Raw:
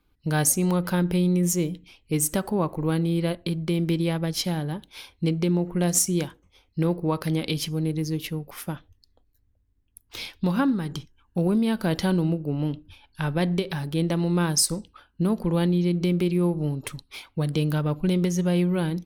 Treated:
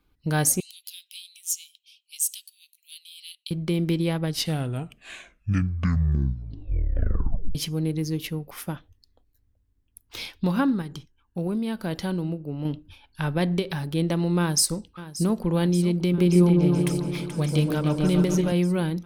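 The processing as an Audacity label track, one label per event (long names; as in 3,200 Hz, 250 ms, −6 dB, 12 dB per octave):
0.600000	3.510000	Butterworth high-pass 2,800 Hz 48 dB per octave
4.170000	4.170000	tape stop 3.38 s
10.820000	12.650000	clip gain −5 dB
14.390000	15.440000	delay throw 580 ms, feedback 80%, level −15 dB
15.990000	18.520000	echo whose low-pass opens from repeat to repeat 143 ms, low-pass from 750 Hz, each repeat up 2 octaves, level −3 dB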